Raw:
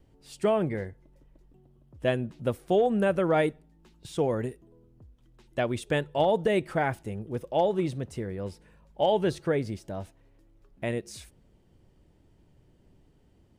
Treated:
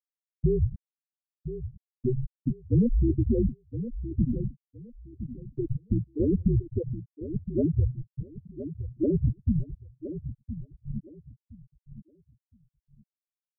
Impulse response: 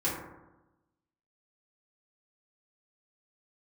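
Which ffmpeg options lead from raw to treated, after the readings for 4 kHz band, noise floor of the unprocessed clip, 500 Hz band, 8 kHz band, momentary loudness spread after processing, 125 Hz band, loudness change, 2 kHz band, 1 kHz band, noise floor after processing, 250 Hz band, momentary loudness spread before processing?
under -40 dB, -62 dBFS, -7.5 dB, under -30 dB, 16 LU, +7.5 dB, -1.0 dB, under -40 dB, under -40 dB, under -85 dBFS, +3.0 dB, 13 LU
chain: -filter_complex "[0:a]tiltshelf=f=1.1k:g=9.5,afreqshift=-260,afftfilt=real='re*gte(hypot(re,im),0.631)':imag='im*gte(hypot(re,im),0.631)':win_size=1024:overlap=0.75,asplit=2[a][b];[b]aecho=0:1:1016|2032|3048:0.266|0.0612|0.0141[c];[a][c]amix=inputs=2:normalize=0,volume=-4.5dB"

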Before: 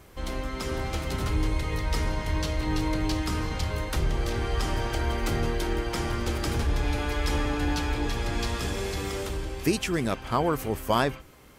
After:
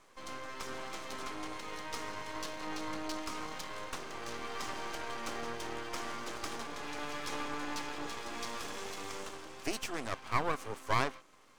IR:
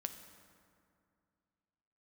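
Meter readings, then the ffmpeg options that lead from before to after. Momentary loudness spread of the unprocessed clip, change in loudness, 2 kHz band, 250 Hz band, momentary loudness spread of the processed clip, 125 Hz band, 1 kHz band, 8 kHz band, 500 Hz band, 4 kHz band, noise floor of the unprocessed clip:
5 LU, -10.5 dB, -6.5 dB, -14.0 dB, 8 LU, -20.5 dB, -6.0 dB, -6.5 dB, -11.0 dB, -8.0 dB, -43 dBFS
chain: -af "highpass=f=250:w=0.5412,highpass=f=250:w=1.3066,equalizer=f=360:t=q:w=4:g=-4,equalizer=f=1.1k:t=q:w=4:g=9,equalizer=f=6.2k:t=q:w=4:g=4,lowpass=f=9.6k:w=0.5412,lowpass=f=9.6k:w=1.3066,aeval=exprs='max(val(0),0)':c=same,volume=-5dB"

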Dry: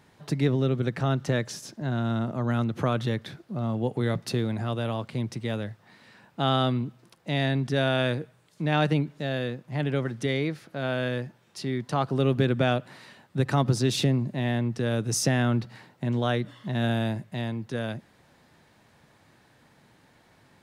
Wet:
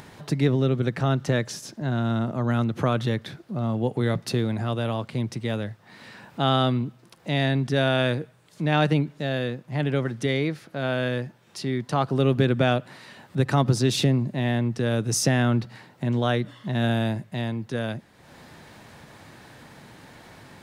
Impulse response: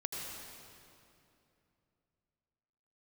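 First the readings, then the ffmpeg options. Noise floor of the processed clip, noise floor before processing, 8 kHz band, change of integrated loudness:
-56 dBFS, -61 dBFS, +2.5 dB, +2.5 dB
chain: -af "acompressor=mode=upward:threshold=-39dB:ratio=2.5,volume=2.5dB"

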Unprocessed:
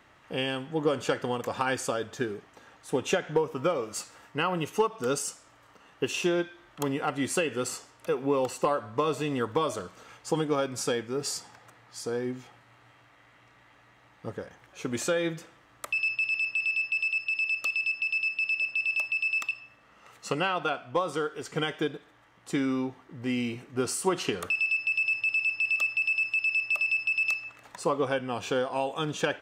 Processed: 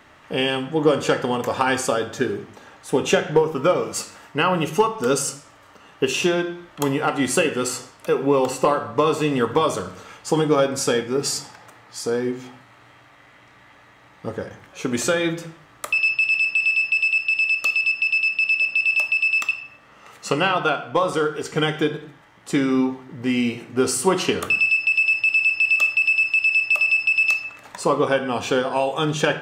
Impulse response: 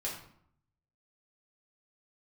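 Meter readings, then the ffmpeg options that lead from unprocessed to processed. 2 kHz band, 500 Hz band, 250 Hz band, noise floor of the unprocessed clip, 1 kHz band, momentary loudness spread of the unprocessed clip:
+8.5 dB, +8.5 dB, +8.5 dB, -59 dBFS, +8.5 dB, 12 LU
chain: -filter_complex "[0:a]asplit=2[a][b];[1:a]atrim=start_sample=2205,afade=t=out:st=0.34:d=0.01,atrim=end_sample=15435[c];[b][c]afir=irnorm=-1:irlink=0,volume=-6.5dB[d];[a][d]amix=inputs=2:normalize=0,volume=5.5dB"

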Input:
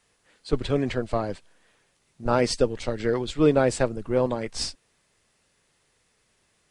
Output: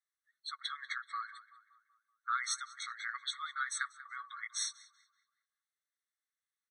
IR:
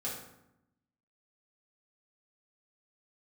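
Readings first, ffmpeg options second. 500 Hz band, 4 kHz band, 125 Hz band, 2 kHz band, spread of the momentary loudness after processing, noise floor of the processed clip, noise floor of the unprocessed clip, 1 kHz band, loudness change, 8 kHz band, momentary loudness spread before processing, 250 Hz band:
under -40 dB, -6.0 dB, under -40 dB, -3.0 dB, 11 LU, under -85 dBFS, -69 dBFS, -8.5 dB, -13.5 dB, -3.0 dB, 10 LU, under -40 dB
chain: -filter_complex "[0:a]acompressor=threshold=-27dB:ratio=1.5,afftdn=nr=26:nf=-49,asplit=2[a][b];[b]adelay=190,lowpass=f=2.4k:p=1,volume=-15dB,asplit=2[c][d];[d]adelay=190,lowpass=f=2.4k:p=1,volume=0.54,asplit=2[e][f];[f]adelay=190,lowpass=f=2.4k:p=1,volume=0.54,asplit=2[g][h];[h]adelay=190,lowpass=f=2.4k:p=1,volume=0.54,asplit=2[i][j];[j]adelay=190,lowpass=f=2.4k:p=1,volume=0.54[k];[c][e][g][i][k]amix=inputs=5:normalize=0[l];[a][l]amix=inputs=2:normalize=0,afftfilt=real='re*eq(mod(floor(b*sr/1024/1100),2),1)':imag='im*eq(mod(floor(b*sr/1024/1100),2),1)':win_size=1024:overlap=0.75,volume=1dB"

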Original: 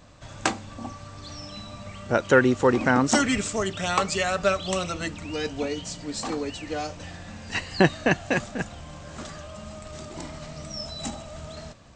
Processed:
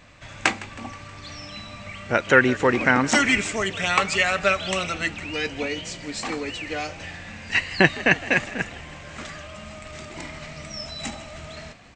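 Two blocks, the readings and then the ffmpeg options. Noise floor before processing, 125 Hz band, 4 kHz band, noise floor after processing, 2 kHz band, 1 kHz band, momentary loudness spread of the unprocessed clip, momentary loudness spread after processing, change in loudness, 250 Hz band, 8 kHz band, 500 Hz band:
-43 dBFS, -1.0 dB, +4.0 dB, -42 dBFS, +7.0 dB, +1.5 dB, 19 LU, 20 LU, +3.0 dB, -1.0 dB, 0.0 dB, -0.5 dB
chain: -filter_complex "[0:a]equalizer=f=2.2k:w=1.4:g=12,asplit=2[a][b];[b]asplit=5[c][d][e][f][g];[c]adelay=159,afreqshift=55,volume=-18.5dB[h];[d]adelay=318,afreqshift=110,volume=-23.2dB[i];[e]adelay=477,afreqshift=165,volume=-28dB[j];[f]adelay=636,afreqshift=220,volume=-32.7dB[k];[g]adelay=795,afreqshift=275,volume=-37.4dB[l];[h][i][j][k][l]amix=inputs=5:normalize=0[m];[a][m]amix=inputs=2:normalize=0,volume=-1dB"

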